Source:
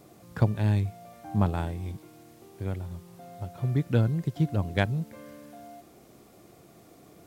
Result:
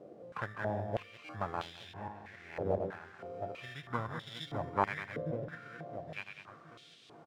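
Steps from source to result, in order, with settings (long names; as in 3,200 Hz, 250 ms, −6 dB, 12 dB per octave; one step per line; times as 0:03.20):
feedback delay that plays each chunk backwards 694 ms, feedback 45%, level −7 dB
treble cut that deepens with the level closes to 2,100 Hz, closed at −23.5 dBFS
in parallel at −7 dB: sample-rate reduction 2,500 Hz, jitter 0%
on the sum: soft clipping −12.5 dBFS, distortion −18 dB
formants moved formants −6 semitones
on a send: single-tap delay 202 ms −9.5 dB
on the sum: band-pass on a step sequencer 3.1 Hz 530–3,400 Hz
level +10.5 dB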